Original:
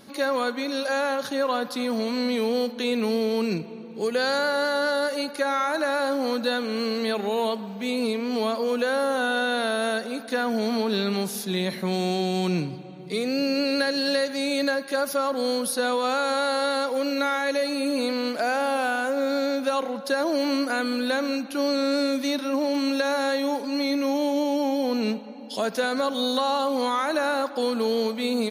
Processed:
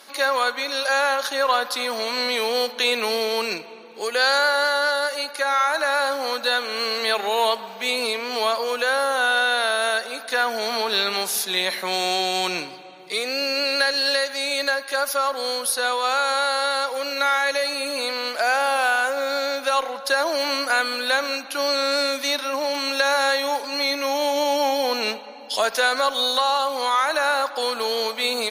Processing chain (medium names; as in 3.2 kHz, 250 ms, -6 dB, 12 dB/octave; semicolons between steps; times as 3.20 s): high-pass 770 Hz 12 dB/octave; gain riding 2 s; Chebyshev shaper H 2 -29 dB, 7 -40 dB, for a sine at -14 dBFS; trim +7.5 dB